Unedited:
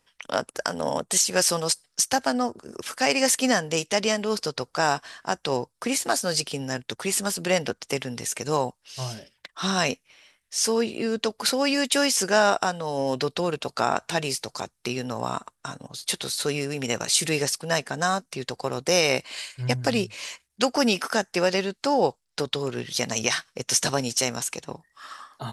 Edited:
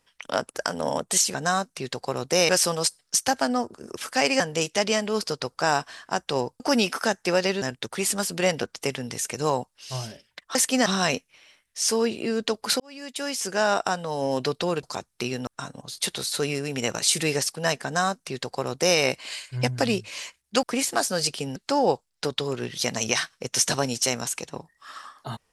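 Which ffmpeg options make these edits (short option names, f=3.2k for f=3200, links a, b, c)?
-filter_complex "[0:a]asplit=13[a][b][c][d][e][f][g][h][i][j][k][l][m];[a]atrim=end=1.342[n];[b]atrim=start=17.898:end=19.052[o];[c]atrim=start=1.338:end=3.252[p];[d]atrim=start=3.558:end=5.762[q];[e]atrim=start=20.688:end=21.712[r];[f]atrim=start=6.688:end=9.622[s];[g]atrim=start=3.248:end=3.562[t];[h]atrim=start=9.618:end=11.56,asetpts=PTS-STARTPTS,afade=t=out:st=1.938:d=0.004:c=hsin[u];[i]atrim=start=11.56:end=13.592,asetpts=PTS-STARTPTS,afade=t=in:d=1.22[v];[j]atrim=start=14.478:end=15.122[w];[k]atrim=start=15.528:end=20.692[x];[l]atrim=start=5.758:end=6.692[y];[m]atrim=start=21.708[z];[n][o]acrossfade=d=0.004:c1=hsin:c2=hsin[aa];[aa][p]acrossfade=d=0.004:c1=hsin:c2=hsin[ab];[ab][q]acrossfade=d=0.004:c1=hsin:c2=hsin[ac];[ac][r]acrossfade=d=0.004:c1=hsin:c2=hsin[ad];[ad][s]acrossfade=d=0.004:c1=hsin:c2=hsin[ae];[ae][t]acrossfade=d=0.004:c1=hsin:c2=hsin[af];[u][v]concat=n=2:v=0:a=1[ag];[af][ag]acrossfade=d=0.004:c1=hsin:c2=hsin[ah];[ah][w]acrossfade=d=0.004:c1=hsin:c2=hsin[ai];[ai][x]acrossfade=d=0.004:c1=hsin:c2=hsin[aj];[aj][y]acrossfade=d=0.004:c1=hsin:c2=hsin[ak];[ak][z]acrossfade=d=0.004:c1=hsin:c2=hsin"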